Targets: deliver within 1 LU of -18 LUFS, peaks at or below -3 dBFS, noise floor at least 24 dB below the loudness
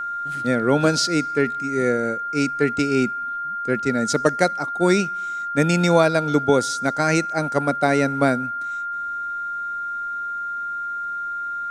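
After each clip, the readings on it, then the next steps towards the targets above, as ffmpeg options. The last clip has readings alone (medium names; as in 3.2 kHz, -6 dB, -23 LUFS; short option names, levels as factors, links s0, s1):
steady tone 1.4 kHz; tone level -25 dBFS; loudness -21.5 LUFS; peak level -2.0 dBFS; loudness target -18.0 LUFS
-> -af "bandreject=f=1400:w=30"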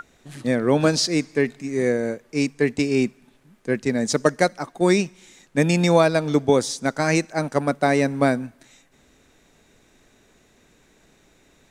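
steady tone not found; loudness -21.5 LUFS; peak level -2.0 dBFS; loudness target -18.0 LUFS
-> -af "volume=1.5,alimiter=limit=0.708:level=0:latency=1"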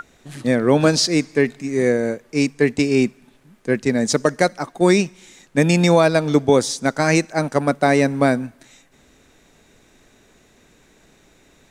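loudness -18.5 LUFS; peak level -3.0 dBFS; noise floor -55 dBFS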